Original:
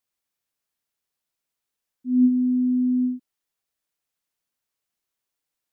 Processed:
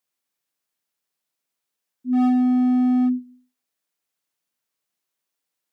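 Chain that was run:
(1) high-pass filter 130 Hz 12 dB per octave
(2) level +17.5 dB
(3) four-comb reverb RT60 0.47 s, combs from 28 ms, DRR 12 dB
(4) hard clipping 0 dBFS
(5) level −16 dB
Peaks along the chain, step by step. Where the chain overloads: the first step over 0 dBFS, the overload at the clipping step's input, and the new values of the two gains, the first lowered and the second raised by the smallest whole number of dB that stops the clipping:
−11.0, +6.5, +9.0, 0.0, −16.0 dBFS
step 2, 9.0 dB
step 2 +8.5 dB, step 5 −7 dB

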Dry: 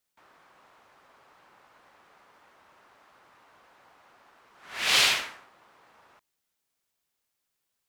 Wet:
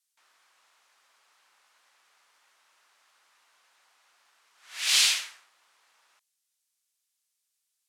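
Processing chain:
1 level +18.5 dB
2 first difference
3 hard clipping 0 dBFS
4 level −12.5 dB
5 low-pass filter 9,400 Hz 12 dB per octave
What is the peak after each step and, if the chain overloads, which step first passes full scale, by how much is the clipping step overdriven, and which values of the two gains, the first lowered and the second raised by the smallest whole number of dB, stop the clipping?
+10.0, +6.0, 0.0, −12.5, −11.5 dBFS
step 1, 6.0 dB
step 1 +12.5 dB, step 4 −6.5 dB

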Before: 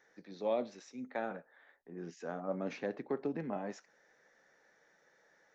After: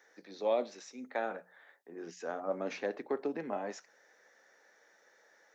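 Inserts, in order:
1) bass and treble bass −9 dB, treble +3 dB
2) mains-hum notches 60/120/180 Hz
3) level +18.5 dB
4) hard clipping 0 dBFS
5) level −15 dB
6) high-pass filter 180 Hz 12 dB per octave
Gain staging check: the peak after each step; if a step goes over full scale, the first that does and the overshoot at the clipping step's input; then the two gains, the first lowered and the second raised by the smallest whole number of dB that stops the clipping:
−22.0, −22.0, −3.5, −3.5, −18.5, −18.5 dBFS
no step passes full scale

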